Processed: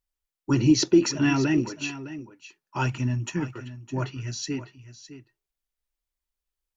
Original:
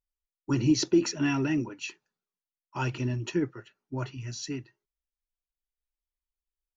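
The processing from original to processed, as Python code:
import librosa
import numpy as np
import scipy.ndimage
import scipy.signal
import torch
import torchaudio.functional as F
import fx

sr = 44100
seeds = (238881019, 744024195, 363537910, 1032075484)

y = fx.curve_eq(x, sr, hz=(240.0, 380.0, 790.0, 2200.0, 4500.0, 7100.0), db=(0, -12, -1, -2, -7, 4), at=(2.86, 3.55))
y = y + 10.0 ** (-14.0 / 20.0) * np.pad(y, (int(609 * sr / 1000.0), 0))[:len(y)]
y = F.gain(torch.from_numpy(y), 4.5).numpy()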